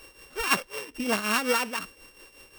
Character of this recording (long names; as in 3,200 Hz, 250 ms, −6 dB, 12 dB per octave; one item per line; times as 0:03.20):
a buzz of ramps at a fixed pitch in blocks of 16 samples
tremolo triangle 5.5 Hz, depth 70%